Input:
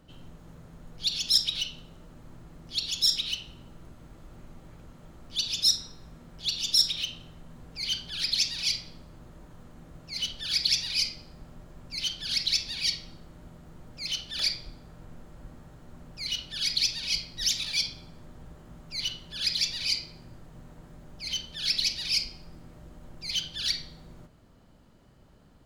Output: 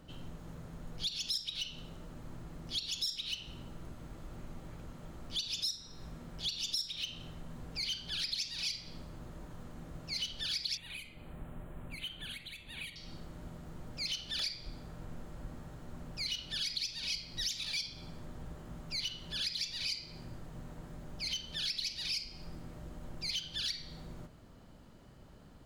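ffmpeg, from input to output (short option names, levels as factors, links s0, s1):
-filter_complex "[0:a]acompressor=threshold=0.0158:ratio=6,asettb=1/sr,asplit=3[s0][s1][s2];[s0]atrim=end=10.774[s3];[s1]atrim=start=10.77:end=12.96,asetpts=PTS-STARTPTS,afade=t=in:d=0.004:c=qsin,afade=t=out:st=2.186:d=0.004:c=qsin,asuperstop=centerf=5300:order=4:qfactor=0.94[s4];[s2]atrim=start=12.956[s5];[s3][s4]acrossfade=d=0.004:c1=hsin:c2=qsin[s6];[s6][s5]acrossfade=d=0.004:c1=qsin:c2=hsin,volume=1.19"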